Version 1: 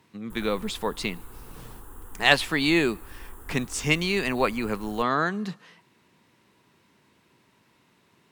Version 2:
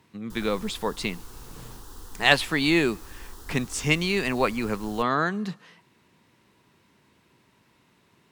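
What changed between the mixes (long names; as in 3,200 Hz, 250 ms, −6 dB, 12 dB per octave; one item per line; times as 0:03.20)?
speech: add low-shelf EQ 68 Hz +8.5 dB
background: remove Butterworth band-reject 4,800 Hz, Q 0.76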